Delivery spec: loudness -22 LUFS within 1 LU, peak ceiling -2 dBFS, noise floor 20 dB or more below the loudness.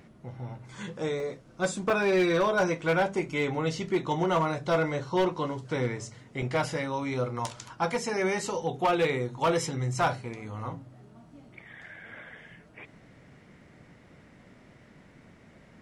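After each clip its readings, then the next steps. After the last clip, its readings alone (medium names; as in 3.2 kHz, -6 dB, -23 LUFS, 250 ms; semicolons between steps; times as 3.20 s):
clipped samples 0.7%; clipping level -19.0 dBFS; dropouts 3; longest dropout 2.3 ms; loudness -29.0 LUFS; peak level -19.0 dBFS; loudness target -22.0 LUFS
-> clip repair -19 dBFS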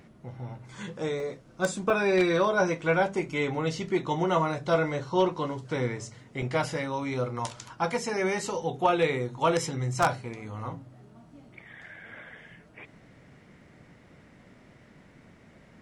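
clipped samples 0.0%; dropouts 3; longest dropout 2.3 ms
-> interpolate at 1.20/1.90/6.42 s, 2.3 ms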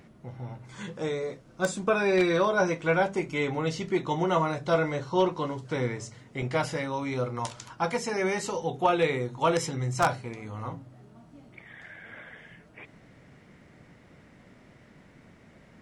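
dropouts 0; loudness -28.5 LUFS; peak level -10.0 dBFS; loudness target -22.0 LUFS
-> trim +6.5 dB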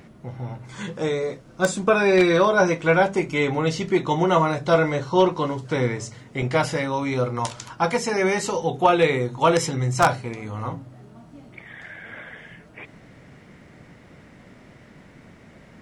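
loudness -22.0 LUFS; peak level -3.5 dBFS; noise floor -49 dBFS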